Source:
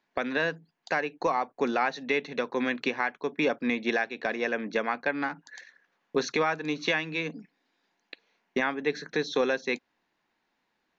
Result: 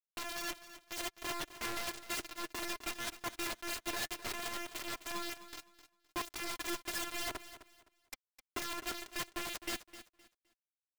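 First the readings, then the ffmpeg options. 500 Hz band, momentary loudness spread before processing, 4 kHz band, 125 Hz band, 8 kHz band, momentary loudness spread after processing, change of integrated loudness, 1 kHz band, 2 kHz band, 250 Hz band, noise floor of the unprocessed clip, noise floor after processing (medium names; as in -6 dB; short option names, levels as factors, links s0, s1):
-18.0 dB, 6 LU, -3.0 dB, -13.0 dB, no reading, 12 LU, -10.5 dB, -11.5 dB, -12.5 dB, -15.0 dB, -78 dBFS, under -85 dBFS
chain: -filter_complex "[0:a]aeval=exprs='if(lt(val(0),0),0.708*val(0),val(0))':c=same,lowpass=3200,equalizer=f=970:t=o:w=1.6:g=-2,areverse,acompressor=threshold=0.0158:ratio=10,areverse,afftfilt=real='hypot(re,im)*cos(PI*b)':imag='0':win_size=512:overlap=0.75,aeval=exprs='val(0)+0.000141*(sin(2*PI*60*n/s)+sin(2*PI*2*60*n/s)/2+sin(2*PI*3*60*n/s)/3+sin(2*PI*4*60*n/s)/4+sin(2*PI*5*60*n/s)/5)':c=same,acrusher=bits=6:mix=0:aa=0.000001,flanger=delay=2.7:depth=4.1:regen=32:speed=0.63:shape=triangular,aeval=exprs='(mod(100*val(0)+1,2)-1)/100':c=same,asplit=2[s0][s1];[s1]aecho=0:1:258|516|774:0.2|0.0499|0.0125[s2];[s0][s2]amix=inputs=2:normalize=0,volume=2.82"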